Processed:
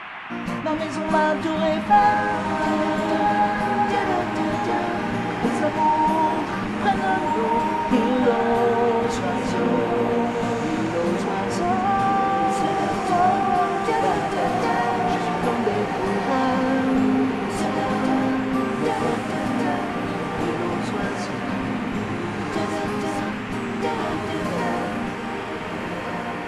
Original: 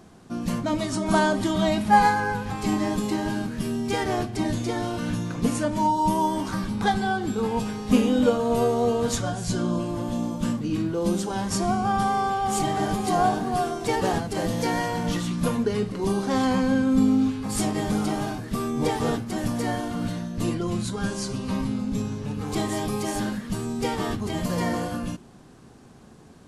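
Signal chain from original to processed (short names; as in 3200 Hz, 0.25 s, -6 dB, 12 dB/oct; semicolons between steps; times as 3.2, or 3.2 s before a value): diffused feedback echo 1.531 s, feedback 43%, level -3.5 dB; band noise 710–2800 Hz -38 dBFS; overdrive pedal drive 12 dB, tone 1200 Hz, clips at -4.5 dBFS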